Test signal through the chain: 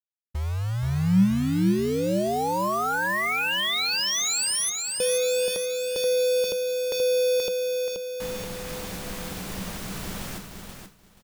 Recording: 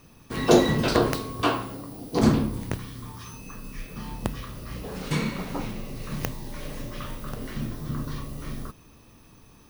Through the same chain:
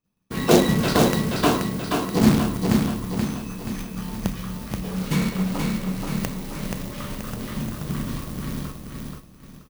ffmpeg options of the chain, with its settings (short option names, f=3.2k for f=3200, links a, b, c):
-filter_complex "[0:a]acrusher=bits=2:mode=log:mix=0:aa=0.000001,asplit=2[a][b];[b]aecho=0:1:479|958|1437|1916|2395|2874:0.631|0.315|0.158|0.0789|0.0394|0.0197[c];[a][c]amix=inputs=2:normalize=0,agate=range=-33dB:threshold=-35dB:ratio=3:detection=peak,equalizer=f=190:w=5.3:g=12"